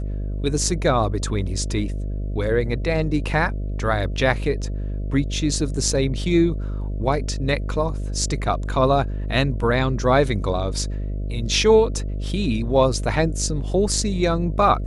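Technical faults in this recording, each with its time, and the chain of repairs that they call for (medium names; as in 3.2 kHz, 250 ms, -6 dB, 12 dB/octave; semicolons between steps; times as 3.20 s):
buzz 50 Hz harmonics 13 -26 dBFS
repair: de-hum 50 Hz, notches 13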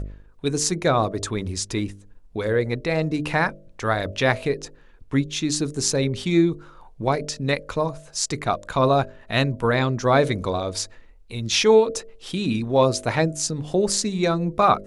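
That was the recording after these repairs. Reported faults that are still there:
nothing left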